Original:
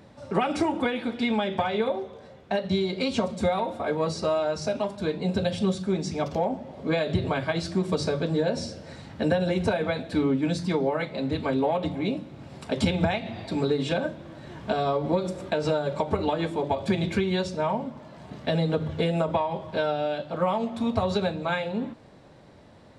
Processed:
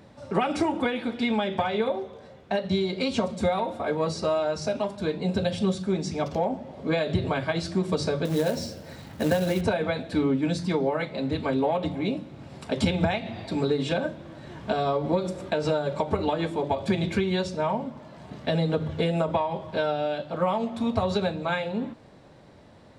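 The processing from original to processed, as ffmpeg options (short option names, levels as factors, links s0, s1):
-filter_complex "[0:a]asettb=1/sr,asplit=3[s0][s1][s2];[s0]atrim=end=8.254[s3];[s1]atrim=start=8.25:end=9.61,asetpts=PTS-STARTPTS,afade=t=in:d=0.004:c=qsin,afade=t=out:st=1.356:d=0.004:c=qsin,acrusher=bits=4:mode=log:mix=0:aa=0.000001[s4];[s2]atrim=start=9.606[s5];[s3][s4]acrossfade=d=0.004:c1=hsin:c2=qsin[s6];[s6][s5]acrossfade=d=0.004:c1=qsin:c2=hsin"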